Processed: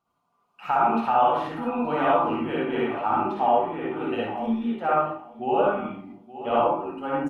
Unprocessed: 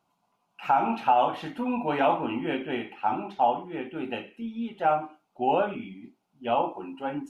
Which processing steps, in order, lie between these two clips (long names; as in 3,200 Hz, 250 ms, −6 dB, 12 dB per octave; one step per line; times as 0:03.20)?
parametric band 1,200 Hz +12 dB 0.21 octaves
repeating echo 873 ms, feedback 27%, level −15.5 dB
convolution reverb RT60 0.45 s, pre-delay 47 ms, DRR −4.5 dB
automatic gain control gain up to 11 dB
low-shelf EQ 100 Hz +7 dB
level −8.5 dB